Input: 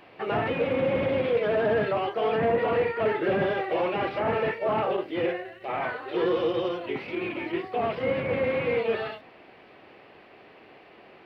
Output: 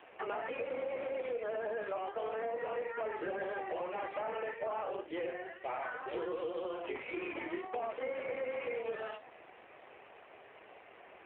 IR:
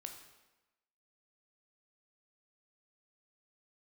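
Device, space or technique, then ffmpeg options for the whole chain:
voicemail: -af "highpass=440,lowpass=2900,acompressor=threshold=-34dB:ratio=8" -ar 8000 -c:a libopencore_amrnb -b:a 7400

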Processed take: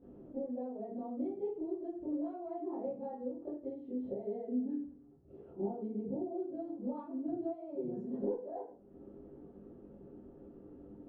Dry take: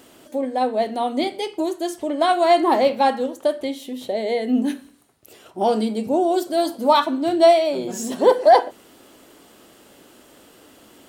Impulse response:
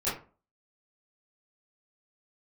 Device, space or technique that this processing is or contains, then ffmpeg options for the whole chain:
television next door: -filter_complex "[0:a]acompressor=threshold=-33dB:ratio=5,lowpass=310[link_01];[1:a]atrim=start_sample=2205[link_02];[link_01][link_02]afir=irnorm=-1:irlink=0,volume=-6dB"

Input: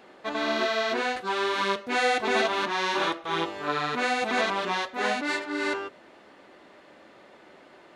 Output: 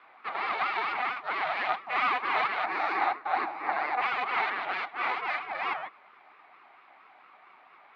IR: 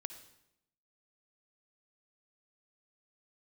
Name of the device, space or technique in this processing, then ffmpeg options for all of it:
voice changer toy: -filter_complex "[0:a]aeval=exprs='val(0)*sin(2*PI*500*n/s+500*0.55/4.4*sin(2*PI*4.4*n/s))':channel_layout=same,highpass=490,equalizer=frequency=520:width_type=q:width=4:gain=-5,equalizer=frequency=760:width_type=q:width=4:gain=9,equalizer=frequency=1200:width_type=q:width=4:gain=7,equalizer=frequency=2200:width_type=q:width=4:gain=8,equalizer=frequency=3200:width_type=q:width=4:gain=-3,lowpass=frequency=3700:width=0.5412,lowpass=frequency=3700:width=1.3066,asettb=1/sr,asplit=3[link_01][link_02][link_03];[link_01]atrim=end=2.644[link_04];[link_02]atrim=start=2.64:end=4.02,asetpts=PTS-STARTPTS,afade=type=in:duration=0.004:curve=qsin,afade=type=out:start_time=1.376:duration=0.004:curve=qsin,equalizer=frequency=315:width_type=o:width=0.33:gain=11,equalizer=frequency=800:width_type=o:width=0.33:gain=7,equalizer=frequency=3150:width_type=o:width=0.33:gain=-10[link_05];[link_03]atrim=start=4.016[link_06];[link_04][link_05]acrossfade=duration=0.004:curve1=hsin:curve2=qsin[link_07];[link_07][link_06]acrossfade=duration=0.004:curve1=qsin:curve2=hsin,volume=-3.5dB"

